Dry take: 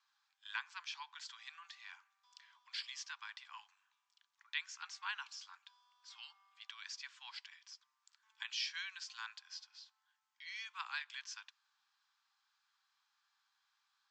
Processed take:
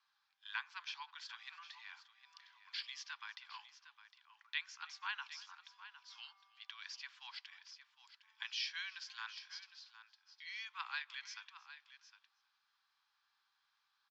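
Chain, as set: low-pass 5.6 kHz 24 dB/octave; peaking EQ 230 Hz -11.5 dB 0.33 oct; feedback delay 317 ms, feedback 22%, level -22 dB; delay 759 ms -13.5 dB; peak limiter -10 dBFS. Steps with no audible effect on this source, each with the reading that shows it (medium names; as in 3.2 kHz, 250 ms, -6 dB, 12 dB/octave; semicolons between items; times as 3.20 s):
peaking EQ 230 Hz: input has nothing below 720 Hz; peak limiter -10 dBFS: peak at its input -23.0 dBFS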